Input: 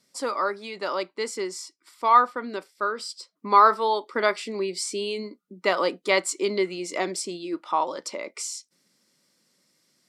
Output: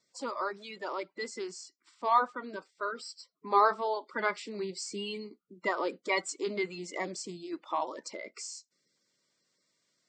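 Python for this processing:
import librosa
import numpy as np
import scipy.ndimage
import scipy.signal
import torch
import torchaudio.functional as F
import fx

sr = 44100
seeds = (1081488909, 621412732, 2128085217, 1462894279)

y = fx.spec_quant(x, sr, step_db=30)
y = scipy.signal.sosfilt(scipy.signal.butter(12, 8100.0, 'lowpass', fs=sr, output='sos'), y)
y = y * 10.0 ** (-7.5 / 20.0)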